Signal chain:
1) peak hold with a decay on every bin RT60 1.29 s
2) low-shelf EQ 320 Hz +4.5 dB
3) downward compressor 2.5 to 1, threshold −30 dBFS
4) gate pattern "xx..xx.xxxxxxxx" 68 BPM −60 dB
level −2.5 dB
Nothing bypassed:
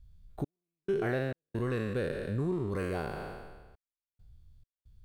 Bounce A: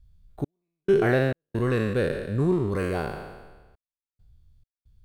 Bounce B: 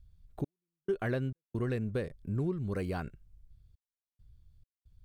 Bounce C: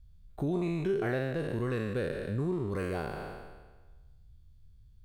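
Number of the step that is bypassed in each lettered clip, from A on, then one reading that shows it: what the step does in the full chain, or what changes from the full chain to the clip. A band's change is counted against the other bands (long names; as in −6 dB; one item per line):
3, average gain reduction 5.0 dB
1, 125 Hz band +4.5 dB
4, change in integrated loudness +1.5 LU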